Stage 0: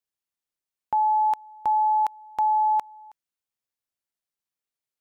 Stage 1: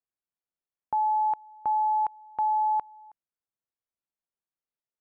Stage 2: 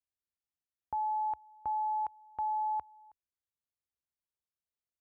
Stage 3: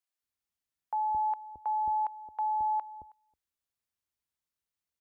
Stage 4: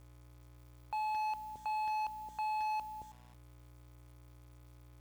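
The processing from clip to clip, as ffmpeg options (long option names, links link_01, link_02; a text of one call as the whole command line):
ffmpeg -i in.wav -af "lowpass=1400,volume=-3dB" out.wav
ffmpeg -i in.wav -af "equalizer=frequency=68:width=0.99:gain=15,volume=-8dB" out.wav
ffmpeg -i in.wav -filter_complex "[0:a]acrossover=split=500[link_01][link_02];[link_01]adelay=220[link_03];[link_03][link_02]amix=inputs=2:normalize=0,volume=3.5dB" out.wav
ffmpeg -i in.wav -af "aeval=exprs='val(0)+0.00126*(sin(2*PI*60*n/s)+sin(2*PI*2*60*n/s)/2+sin(2*PI*3*60*n/s)/3+sin(2*PI*4*60*n/s)/4+sin(2*PI*5*60*n/s)/5)':channel_layout=same,asoftclip=type=tanh:threshold=-33.5dB,acrusher=bits=9:mix=0:aa=0.000001" out.wav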